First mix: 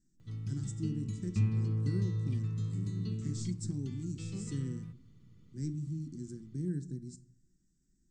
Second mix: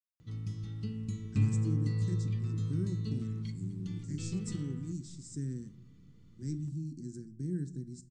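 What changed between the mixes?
speech: entry +0.85 s; background: send +11.0 dB

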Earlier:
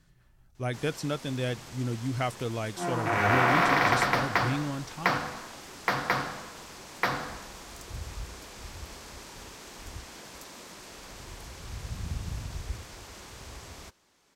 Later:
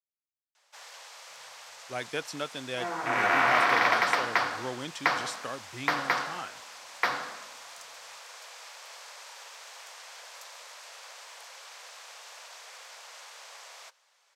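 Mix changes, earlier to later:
speech: entry +1.30 s; first sound: add steep high-pass 490 Hz 48 dB/octave; master: add frequency weighting A

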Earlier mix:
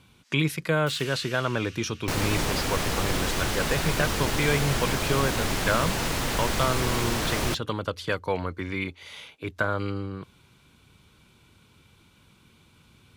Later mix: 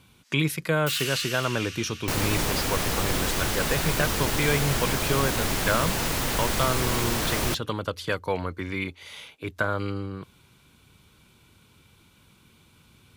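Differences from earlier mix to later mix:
first sound +8.0 dB; master: add treble shelf 11 kHz +9 dB

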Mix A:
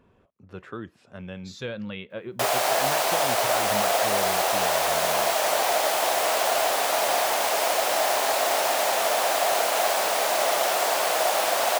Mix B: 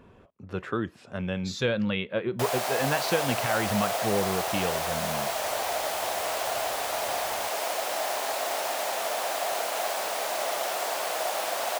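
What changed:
speech +7.0 dB; background -6.5 dB

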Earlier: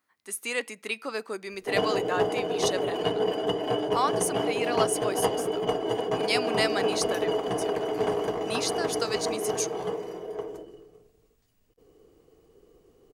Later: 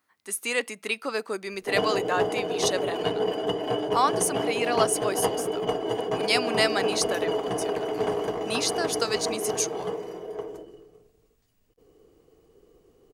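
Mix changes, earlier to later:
speech +4.0 dB; reverb: off

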